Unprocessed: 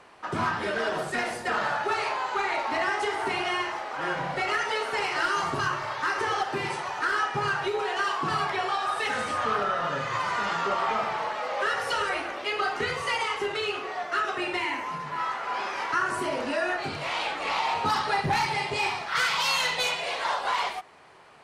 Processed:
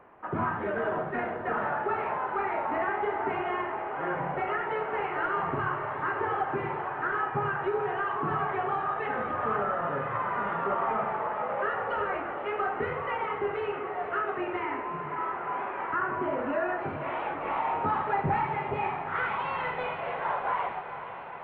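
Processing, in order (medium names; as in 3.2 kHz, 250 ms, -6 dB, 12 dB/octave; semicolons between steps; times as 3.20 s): Gaussian low-pass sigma 4.7 samples; on a send: echo that smears into a reverb 494 ms, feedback 73%, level -11.5 dB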